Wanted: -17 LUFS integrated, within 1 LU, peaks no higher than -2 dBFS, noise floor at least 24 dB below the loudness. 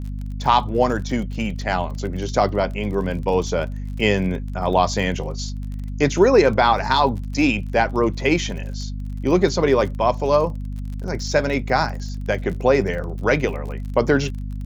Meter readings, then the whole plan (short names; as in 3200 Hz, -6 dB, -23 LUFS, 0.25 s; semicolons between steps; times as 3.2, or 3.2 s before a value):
ticks 36/s; hum 50 Hz; harmonics up to 250 Hz; hum level -26 dBFS; loudness -21.0 LUFS; peak -2.0 dBFS; loudness target -17.0 LUFS
-> de-click; notches 50/100/150/200/250 Hz; gain +4 dB; limiter -2 dBFS